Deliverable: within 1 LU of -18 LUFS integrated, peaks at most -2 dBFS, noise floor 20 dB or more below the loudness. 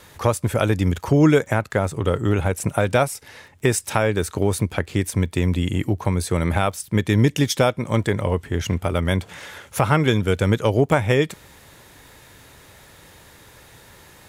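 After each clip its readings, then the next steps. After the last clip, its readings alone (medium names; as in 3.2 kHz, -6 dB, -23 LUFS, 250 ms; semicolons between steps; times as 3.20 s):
tick rate 22 per s; loudness -21.0 LUFS; peak level -2.5 dBFS; loudness target -18.0 LUFS
-> de-click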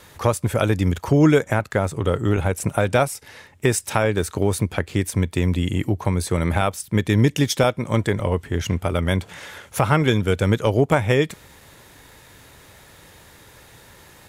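tick rate 0.070 per s; loudness -21.0 LUFS; peak level -2.5 dBFS; loudness target -18.0 LUFS
-> trim +3 dB; peak limiter -2 dBFS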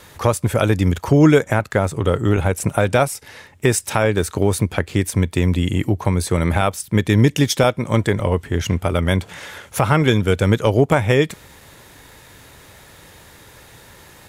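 loudness -18.5 LUFS; peak level -2.0 dBFS; noise floor -46 dBFS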